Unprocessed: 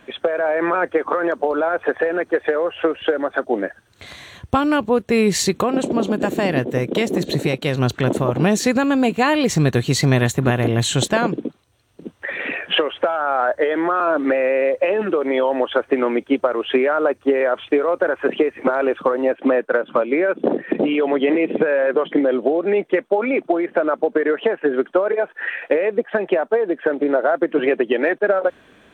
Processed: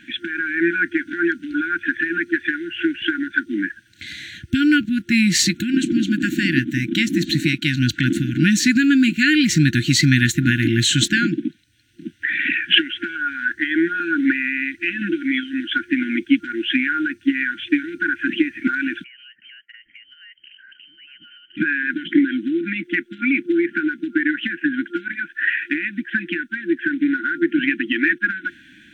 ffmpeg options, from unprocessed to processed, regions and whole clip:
-filter_complex "[0:a]asettb=1/sr,asplit=3[a][b][c];[a]atrim=end=19.044[d];[b]atrim=start=19.04:end=21.57,asetpts=PTS-STARTPTS,afade=t=in:d=0.004:c=qsin,afade=t=out:st=2.526:d=0.004:c=qsin,aderivative,lowpass=f=2.9k:t=q:w=0.5098,lowpass=f=2.9k:t=q:w=0.6013,lowpass=f=2.9k:t=q:w=0.9,lowpass=f=2.9k:t=q:w=2.563,afreqshift=-3400,acompressor=threshold=-48dB:ratio=4:attack=3.2:release=140:knee=1:detection=peak[e];[c]atrim=start=21.566[f];[d][e]acrossfade=d=0.004:c1=hsin:c2=qsin[g];[g][f]acrossfade=d=0.004:c1=qsin:c2=hsin,equalizer=f=11k:t=o:w=0.91:g=-7.5,afftfilt=real='re*(1-between(b*sr/4096,350,1400))':imag='im*(1-between(b*sr/4096,350,1400))':win_size=4096:overlap=0.75,lowshelf=f=140:g=-11.5,volume=6dB"

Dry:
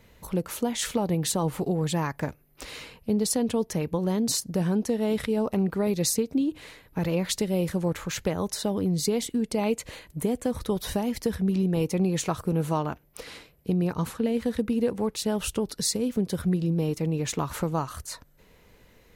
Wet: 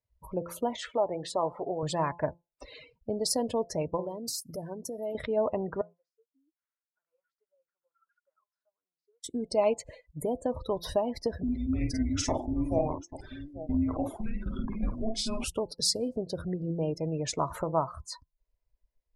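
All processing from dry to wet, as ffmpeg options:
-filter_complex "[0:a]asettb=1/sr,asplit=3[a][b][c];[a]atrim=end=0.764[d];[b]atrim=start=0.76:end=1.83,asetpts=PTS-STARTPTS,afade=t=in:d=0.004:c=qsin,afade=t=out:st=1.066:d=0.004:c=qsin,acrusher=bits=7:mode=log:mix=0:aa=0.000001,bass=f=250:g=-12,treble=f=4k:g=-10,aeval=exprs='val(0)+0.001*(sin(2*PI*60*n/s)+sin(2*PI*2*60*n/s)/2+sin(2*PI*3*60*n/s)/3+sin(2*PI*4*60*n/s)/4+sin(2*PI*5*60*n/s)/5)':c=same[e];[c]atrim=start=1.826[f];[d][e]acrossfade=d=0.004:c1=hsin:c2=qsin[g];[g][f]acrossfade=d=0.004:c1=qsin:c2=hsin,asettb=1/sr,asplit=3[h][i][j];[h]atrim=end=4.004[k];[i]atrim=start=4:end=5.15,asetpts=PTS-STARTPTS,afade=t=in:d=0.004:c=qsin,afade=t=out:st=1.146:d=0.004:c=qsin,aemphasis=mode=production:type=50fm,bandreject=f=60:t=h:w=6,bandreject=f=120:t=h:w=6,bandreject=f=180:t=h:w=6,acompressor=threshold=-29dB:ratio=6:attack=3.2:release=140:knee=1:detection=peak[l];[j]atrim=start=5.146[m];[k][l]acrossfade=d=0.004:c1=hsin:c2=qsin[n];[n][m]acrossfade=d=0.004:c1=qsin:c2=hsin,asettb=1/sr,asplit=3[o][p][q];[o]atrim=end=5.814[r];[p]atrim=start=5.81:end=9.24,asetpts=PTS-STARTPTS,afade=t=in:d=0.004:c=qsin,afade=t=out:st=3.426:d=0.004:c=qsin,bandpass=f=1.4k:t=q:w=9.1,acompressor=threshold=-59dB:ratio=1.5:attack=3.2:release=140:knee=1:detection=peak[s];[q]atrim=start=9.236[t];[r][s]acrossfade=d=0.004:c1=hsin:c2=qsin[u];[u][t]acrossfade=d=0.004:c1=qsin:c2=hsin,asettb=1/sr,asplit=3[v][w][x];[v]atrim=end=11.434[y];[w]atrim=start=11.43:end=15.44,asetpts=PTS-STARTPTS,afade=t=in:d=0.004:c=qsin,afade=t=out:st=4.006:d=0.004:c=qsin,afreqshift=-440,aecho=1:1:41|50|840:0.299|0.631|0.251,atrim=end_sample=176841[z];[x]atrim=start=15.436[aa];[y][z]acrossfade=d=0.004:c1=hsin:c2=qsin[ab];[ab][aa]acrossfade=d=0.004:c1=qsin:c2=hsin,bandreject=f=171.5:t=h:w=4,bandreject=f=343:t=h:w=4,bandreject=f=514.5:t=h:w=4,bandreject=f=686:t=h:w=4,bandreject=f=857.5:t=h:w=4,bandreject=f=1.029k:t=h:w=4,afftdn=nr=36:nf=-38,equalizer=f=200:t=o:w=0.33:g=-10,equalizer=f=630:t=o:w=0.33:g=12,equalizer=f=1k:t=o:w=0.33:g=7,equalizer=f=5k:t=o:w=0.33:g=10,volume=-4dB"

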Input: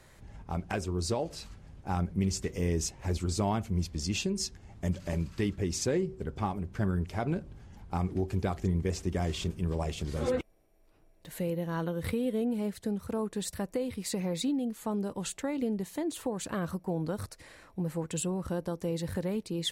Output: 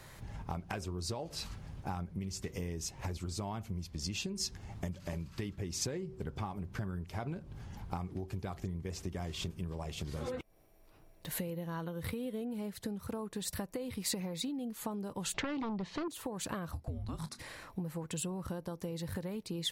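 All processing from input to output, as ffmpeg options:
-filter_complex "[0:a]asettb=1/sr,asplit=3[a][b][c];[a]atrim=end=15.344[d];[b]atrim=start=15.34:end=16.08,asetpts=PTS-STARTPTS,afade=t=in:d=0.004:c=qsin,afade=t=out:st=0.736:d=0.004:c=qsin,lowpass=f=4.9k:w=0.5412,lowpass=f=4.9k:w=1.3066,aeval=exprs='0.0841*sin(PI/2*2.24*val(0)/0.0841)':c=same[e];[c]atrim=start=16.076[f];[d][e]acrossfade=d=0.004:c1=hsin:c2=qsin[g];[g][f]acrossfade=d=0.004:c1=qsin:c2=hsin,asettb=1/sr,asplit=3[h][i][j];[h]atrim=end=16.724[k];[i]atrim=start=16.72:end=17.39,asetpts=PTS-STARTPTS,afade=t=in:d=0.004:c=qsin,afade=t=out:st=0.666:d=0.004:c=qsin,lowpass=9.4k,asplit=2[l][m];[m]adelay=28,volume=-13.5dB[n];[l][n]amix=inputs=2:normalize=0,atrim=end_sample=29547,afreqshift=-260[o];[j]atrim=start=17.386[p];[k][o]acrossfade=d=0.004:c1=hsin:c2=qsin[q];[q][p]acrossfade=d=0.004:c1=qsin:c2=hsin,equalizer=f=125:t=o:w=1:g=5,equalizer=f=1k:t=o:w=1:g=4,equalizer=f=8k:t=o:w=1:g=-6,acompressor=threshold=-37dB:ratio=12,highshelf=f=3.2k:g=9,volume=1.5dB"

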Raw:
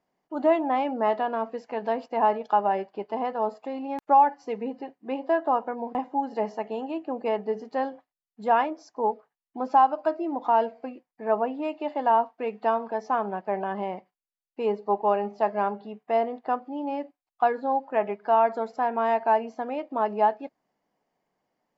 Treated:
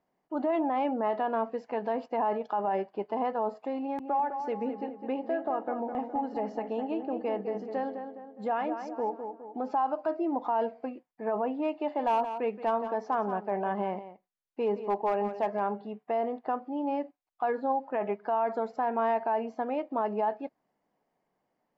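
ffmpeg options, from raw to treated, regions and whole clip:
-filter_complex "[0:a]asettb=1/sr,asplit=3[a][b][c];[a]atrim=end=3.794[d];[b]atrim=start=3.79:end=9.71,asetpts=PTS-STARTPTS,afade=t=in:d=0.004:c=qsin,afade=t=out:st=5.916:d=0.004:c=qsin,bandreject=f=1k:w=9.3,acompressor=threshold=-27dB:ratio=3:attack=3.2:release=140:knee=1:detection=peak,asplit=2[e][f];[f]adelay=207,lowpass=f=2.1k:p=1,volume=-7dB,asplit=2[g][h];[h]adelay=207,lowpass=f=2.1k:p=1,volume=0.48,asplit=2[i][j];[j]adelay=207,lowpass=f=2.1k:p=1,volume=0.48,asplit=2[k][l];[l]adelay=207,lowpass=f=2.1k:p=1,volume=0.48,asplit=2[m][n];[n]adelay=207,lowpass=f=2.1k:p=1,volume=0.48,asplit=2[o][p];[p]adelay=207,lowpass=f=2.1k:p=1,volume=0.48[q];[e][g][i][k][m][o][q]amix=inputs=7:normalize=0,atrim=end_sample=261072[r];[c]atrim=start=9.706[s];[d][r]acrossfade=d=0.004:c1=hsin:c2=qsin[t];[t][s]acrossfade=d=0.004:c1=qsin:c2=hsin,asettb=1/sr,asplit=3[u][v][w];[u]atrim=end=11.784[x];[v]atrim=start=11.78:end=15.6,asetpts=PTS-STARTPTS,afade=t=in:d=0.004:c=qsin,afade=t=out:st=3.816:d=0.004:c=qsin,asoftclip=type=hard:threshold=-16.5dB,aecho=1:1:173:0.211,atrim=end_sample=168462[y];[w]atrim=start=15.596[z];[x][y]acrossfade=d=0.004:c1=hsin:c2=qsin[aa];[aa][z]acrossfade=d=0.004:c1=qsin:c2=hsin,highshelf=f=3.4k:g=-9,alimiter=limit=-20.5dB:level=0:latency=1:release=25"

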